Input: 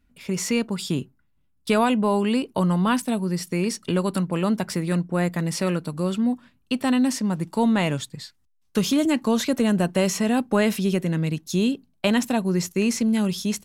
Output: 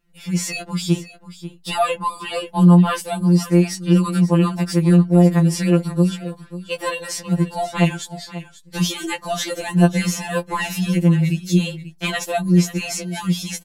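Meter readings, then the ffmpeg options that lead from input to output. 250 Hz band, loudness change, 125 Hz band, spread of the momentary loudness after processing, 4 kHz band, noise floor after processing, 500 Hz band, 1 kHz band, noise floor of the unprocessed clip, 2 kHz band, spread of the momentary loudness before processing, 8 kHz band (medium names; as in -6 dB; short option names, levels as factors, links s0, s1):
+3.5 dB, +4.5 dB, +9.5 dB, 15 LU, +3.0 dB, -47 dBFS, +1.0 dB, +3.0 dB, -65 dBFS, +3.0 dB, 6 LU, +3.0 dB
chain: -af "aecho=1:1:539:0.178,afftfilt=real='re*2.83*eq(mod(b,8),0)':imag='im*2.83*eq(mod(b,8),0)':win_size=2048:overlap=0.75,volume=1.88"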